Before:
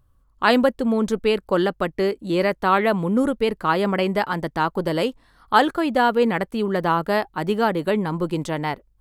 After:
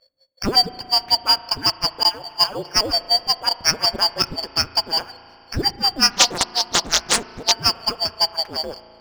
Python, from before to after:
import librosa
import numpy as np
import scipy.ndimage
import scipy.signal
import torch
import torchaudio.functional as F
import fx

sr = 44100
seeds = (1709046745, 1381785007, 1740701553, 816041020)

p1 = fx.band_shuffle(x, sr, order='2341')
p2 = fx.dynamic_eq(p1, sr, hz=4000.0, q=0.86, threshold_db=-30.0, ratio=4.0, max_db=4)
p3 = fx.filter_lfo_lowpass(p2, sr, shape='sine', hz=5.5, low_hz=480.0, high_hz=6100.0, q=1.4)
p4 = fx.dispersion(p3, sr, late='lows', ms=117.0, hz=2100.0, at=(2.03, 2.81))
p5 = fx.sample_hold(p4, sr, seeds[0], rate_hz=3900.0, jitter_pct=0)
p6 = p4 + F.gain(torch.from_numpy(p5), -6.5).numpy()
p7 = fx.rev_spring(p6, sr, rt60_s=3.3, pass_ms=(36,), chirp_ms=45, drr_db=14.0)
p8 = fx.doppler_dist(p7, sr, depth_ms=0.95, at=(6.11, 7.52))
y = F.gain(torch.from_numpy(p8), -2.5).numpy()